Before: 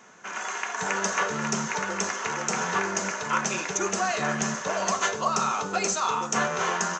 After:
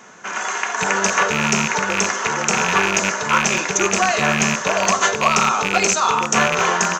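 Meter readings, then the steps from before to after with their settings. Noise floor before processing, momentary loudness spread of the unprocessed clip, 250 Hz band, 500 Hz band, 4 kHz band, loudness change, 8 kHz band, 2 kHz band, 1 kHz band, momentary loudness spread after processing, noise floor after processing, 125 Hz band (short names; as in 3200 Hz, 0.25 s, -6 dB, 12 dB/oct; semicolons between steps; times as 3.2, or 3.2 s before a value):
-36 dBFS, 4 LU, +8.5 dB, +8.5 dB, +11.0 dB, +9.5 dB, +8.5 dB, +10.5 dB, +8.5 dB, 4 LU, -27 dBFS, +9.0 dB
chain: rattling part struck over -37 dBFS, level -16 dBFS; gain +8.5 dB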